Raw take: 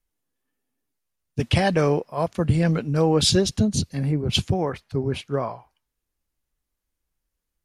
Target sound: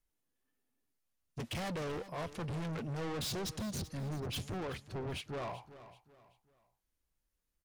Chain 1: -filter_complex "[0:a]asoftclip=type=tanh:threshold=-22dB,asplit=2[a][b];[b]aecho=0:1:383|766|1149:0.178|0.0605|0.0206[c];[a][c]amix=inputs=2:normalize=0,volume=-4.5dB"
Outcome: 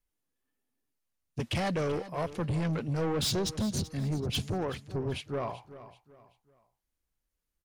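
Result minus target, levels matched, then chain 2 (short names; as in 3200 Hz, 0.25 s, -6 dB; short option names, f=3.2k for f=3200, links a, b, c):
soft clip: distortion -5 dB
-filter_complex "[0:a]asoftclip=type=tanh:threshold=-32.5dB,asplit=2[a][b];[b]aecho=0:1:383|766|1149:0.178|0.0605|0.0206[c];[a][c]amix=inputs=2:normalize=0,volume=-4.5dB"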